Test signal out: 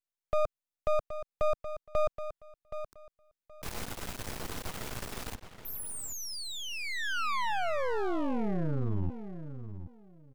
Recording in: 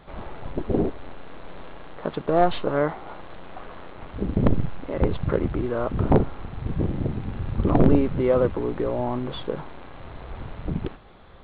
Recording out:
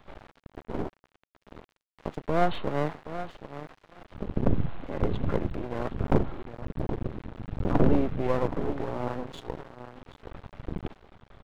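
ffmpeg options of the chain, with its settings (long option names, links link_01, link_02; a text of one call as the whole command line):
ffmpeg -i in.wav -filter_complex "[0:a]asplit=2[link_01][link_02];[link_02]adelay=773,lowpass=frequency=2800:poles=1,volume=-10.5dB,asplit=2[link_03][link_04];[link_04]adelay=773,lowpass=frequency=2800:poles=1,volume=0.2,asplit=2[link_05][link_06];[link_06]adelay=773,lowpass=frequency=2800:poles=1,volume=0.2[link_07];[link_01][link_03][link_05][link_07]amix=inputs=4:normalize=0,acrossover=split=170|540|1600[link_08][link_09][link_10][link_11];[link_11]alimiter=level_in=5dB:limit=-24dB:level=0:latency=1:release=30,volume=-5dB[link_12];[link_08][link_09][link_10][link_12]amix=inputs=4:normalize=0,aeval=exprs='max(val(0),0)':channel_layout=same,volume=-3dB" out.wav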